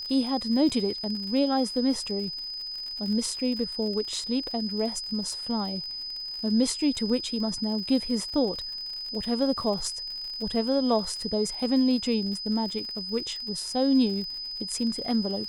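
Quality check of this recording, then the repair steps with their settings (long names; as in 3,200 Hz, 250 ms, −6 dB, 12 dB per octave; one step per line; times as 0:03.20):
surface crackle 58 per second −35 dBFS
whistle 5,000 Hz −33 dBFS
0:00.69–0:00.70: drop-out 6 ms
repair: click removal
notch filter 5,000 Hz, Q 30
repair the gap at 0:00.69, 6 ms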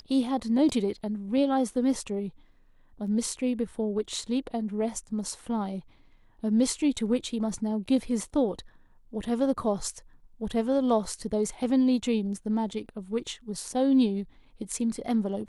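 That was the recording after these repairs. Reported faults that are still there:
none of them is left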